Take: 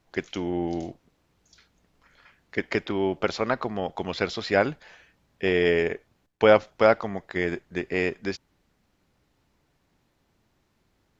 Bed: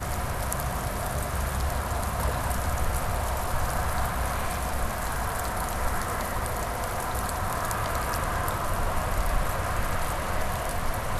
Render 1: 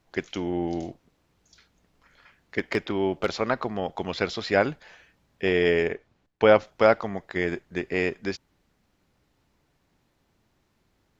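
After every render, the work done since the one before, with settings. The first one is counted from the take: 2.59–3.32 s: hard clipper -12.5 dBFS; 5.87–6.59 s: distance through air 71 m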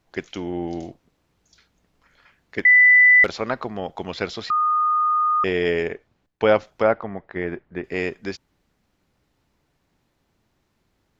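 2.65–3.24 s: bleep 1.99 kHz -9 dBFS; 4.50–5.44 s: bleep 1.23 kHz -16.5 dBFS; 6.82–7.84 s: low-pass 2 kHz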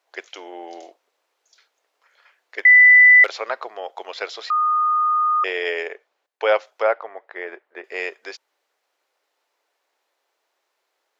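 inverse Chebyshev high-pass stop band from 180 Hz, stop band 50 dB; dynamic bell 2.4 kHz, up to +3 dB, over -28 dBFS, Q 1.1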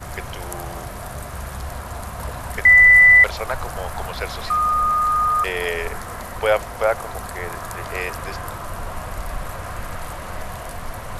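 add bed -2.5 dB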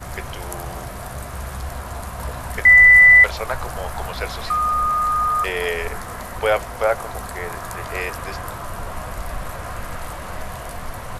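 doubling 16 ms -12 dB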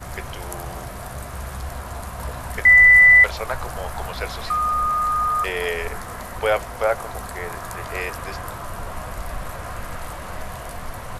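trim -1.5 dB

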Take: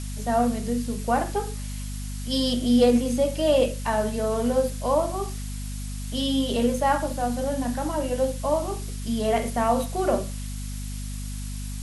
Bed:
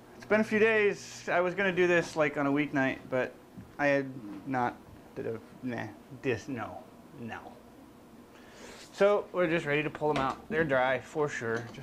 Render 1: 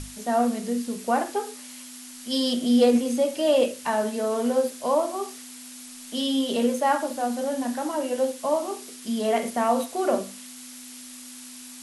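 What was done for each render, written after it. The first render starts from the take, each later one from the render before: hum notches 50/100/150/200 Hz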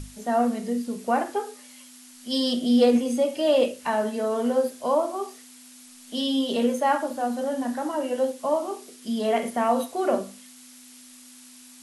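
noise print and reduce 6 dB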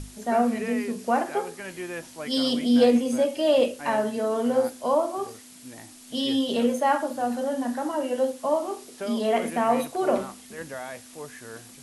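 add bed -9.5 dB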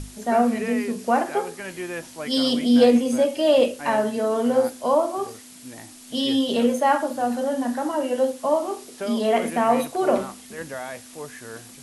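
trim +3 dB

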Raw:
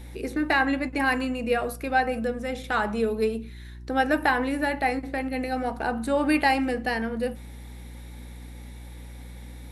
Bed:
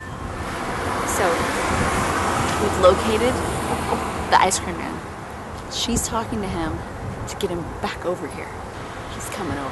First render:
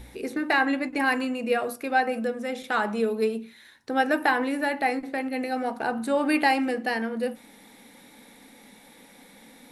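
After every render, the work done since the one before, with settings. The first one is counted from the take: de-hum 60 Hz, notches 6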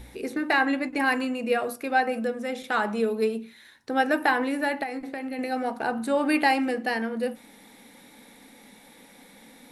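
4.83–5.39 s: compression 10:1, threshold -28 dBFS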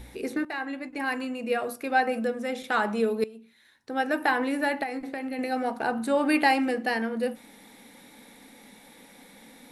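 0.45–2.08 s: fade in, from -13 dB; 3.24–4.57 s: fade in, from -19 dB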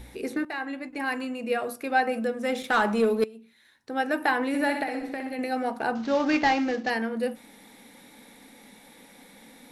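2.43–3.25 s: waveshaping leveller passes 1; 4.48–5.36 s: flutter echo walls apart 10.8 m, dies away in 0.63 s; 5.95–6.90 s: CVSD coder 32 kbps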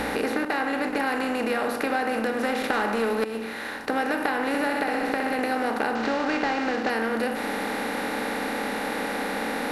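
spectral levelling over time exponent 0.4; compression, threshold -22 dBFS, peak gain reduction 8.5 dB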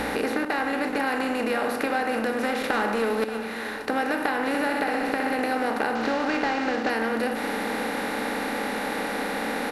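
delay 581 ms -13 dB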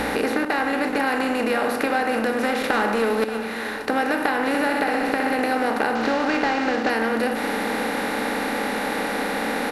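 trim +3.5 dB

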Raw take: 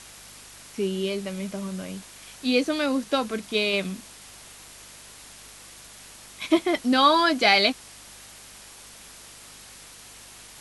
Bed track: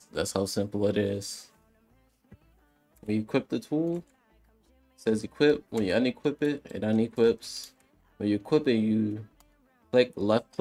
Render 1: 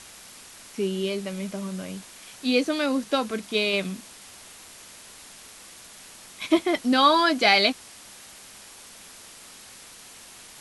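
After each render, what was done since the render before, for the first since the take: de-hum 50 Hz, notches 3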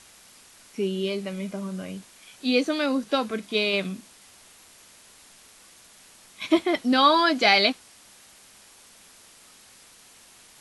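noise print and reduce 6 dB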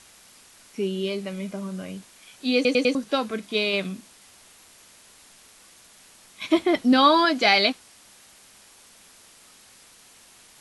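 2.55 s: stutter in place 0.10 s, 4 plays; 6.60–7.25 s: bass shelf 420 Hz +6 dB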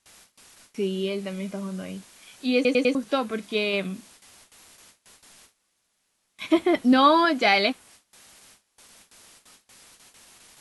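gate with hold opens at -41 dBFS; dynamic bell 4.9 kHz, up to -6 dB, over -41 dBFS, Q 1.1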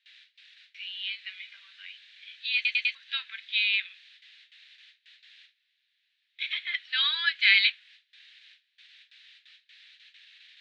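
Chebyshev band-pass 1.7–3.9 kHz, order 3; tilt EQ +3 dB/octave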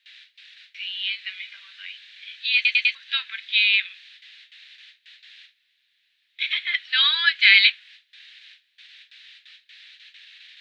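trim +7 dB; peak limiter -2 dBFS, peak gain reduction 2 dB

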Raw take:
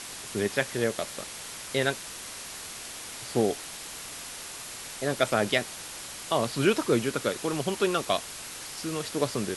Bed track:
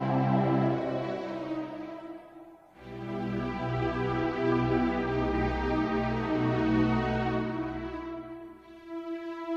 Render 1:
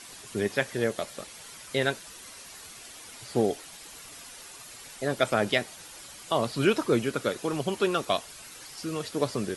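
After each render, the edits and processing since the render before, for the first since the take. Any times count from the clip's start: noise reduction 9 dB, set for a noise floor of -41 dBFS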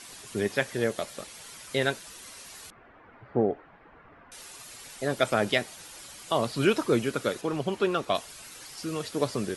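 2.70–4.32 s: low-pass 1.7 kHz 24 dB/octave; 7.41–8.15 s: treble shelf 5.2 kHz -11 dB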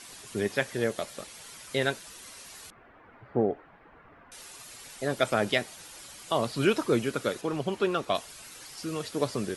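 trim -1 dB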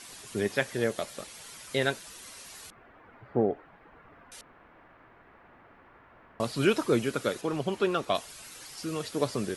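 4.41–6.40 s: room tone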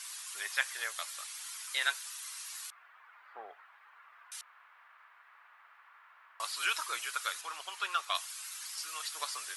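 Chebyshev high-pass 1.1 kHz, order 3; treble shelf 4.7 kHz +5 dB

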